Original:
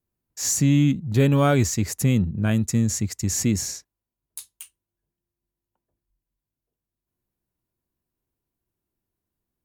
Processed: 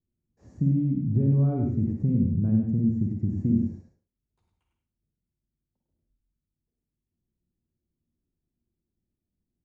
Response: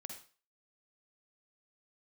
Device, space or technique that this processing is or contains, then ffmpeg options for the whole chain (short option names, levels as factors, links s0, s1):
television next door: -filter_complex "[0:a]acompressor=threshold=0.0794:ratio=4,lowpass=310[s0];[1:a]atrim=start_sample=2205[s1];[s0][s1]afir=irnorm=-1:irlink=0,equalizer=f=7300:w=0.8:g=4,aecho=1:1:102:0.562,volume=2.11"